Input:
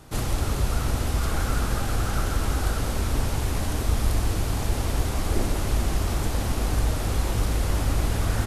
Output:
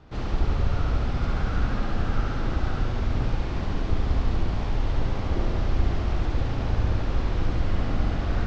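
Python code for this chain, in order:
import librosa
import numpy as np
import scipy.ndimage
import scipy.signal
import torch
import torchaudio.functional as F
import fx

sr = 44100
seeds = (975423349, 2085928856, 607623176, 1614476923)

y = fx.octave_divider(x, sr, octaves=2, level_db=2.0)
y = scipy.signal.sosfilt(scipy.signal.bessel(8, 3300.0, 'lowpass', norm='mag', fs=sr, output='sos'), y)
y = fx.room_flutter(y, sr, wall_m=12.0, rt60_s=1.1)
y = F.gain(torch.from_numpy(y), -4.5).numpy()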